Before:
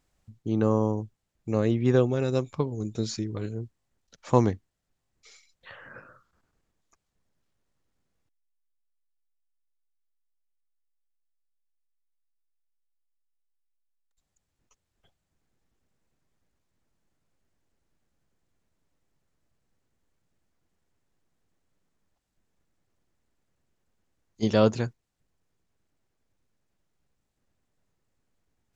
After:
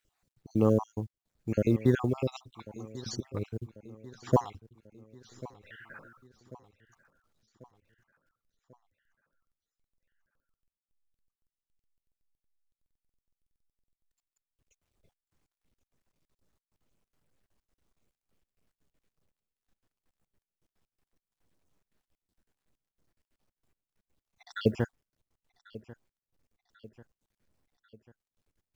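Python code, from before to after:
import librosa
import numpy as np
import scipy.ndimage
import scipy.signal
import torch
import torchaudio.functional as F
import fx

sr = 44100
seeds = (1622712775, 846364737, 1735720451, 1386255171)

p1 = fx.spec_dropout(x, sr, seeds[0], share_pct=57)
p2 = fx.high_shelf(p1, sr, hz=5500.0, db=-4.5)
p3 = fx.quant_companded(p2, sr, bits=8)
y = p3 + fx.echo_feedback(p3, sr, ms=1092, feedback_pct=52, wet_db=-19.0, dry=0)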